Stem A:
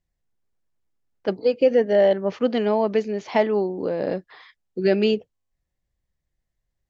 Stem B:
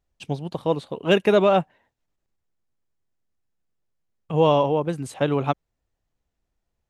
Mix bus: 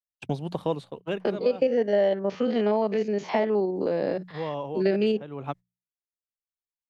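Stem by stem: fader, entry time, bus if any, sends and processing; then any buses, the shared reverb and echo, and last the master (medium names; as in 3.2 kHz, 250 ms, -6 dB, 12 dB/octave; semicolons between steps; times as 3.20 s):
-2.5 dB, 0.00 s, no send, spectrogram pixelated in time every 50 ms
-7.5 dB, 0.00 s, no send, peaking EQ 92 Hz +6 dB 0.88 oct; auto duck -15 dB, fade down 0.50 s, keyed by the first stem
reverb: none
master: gate -45 dBFS, range -56 dB; hum notches 60/120/180 Hz; three bands compressed up and down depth 70%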